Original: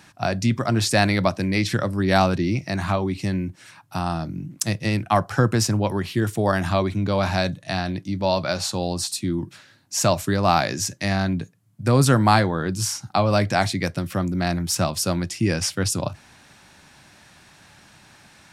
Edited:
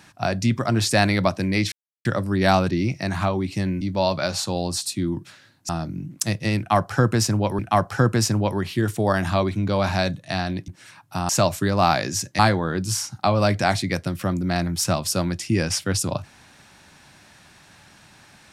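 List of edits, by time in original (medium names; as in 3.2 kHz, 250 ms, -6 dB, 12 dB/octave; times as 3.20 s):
1.72 s: insert silence 0.33 s
3.48–4.09 s: swap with 8.07–9.95 s
4.98–5.99 s: loop, 2 plays
11.05–12.30 s: delete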